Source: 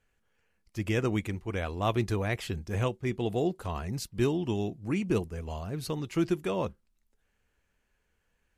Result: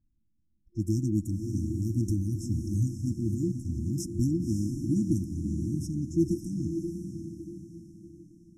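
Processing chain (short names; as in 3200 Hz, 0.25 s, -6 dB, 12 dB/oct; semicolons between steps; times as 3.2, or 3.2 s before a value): FFT band-reject 350–5200 Hz; low-pass opened by the level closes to 1800 Hz, open at -29.5 dBFS; diffused feedback echo 0.568 s, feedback 42%, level -6 dB; gain +3 dB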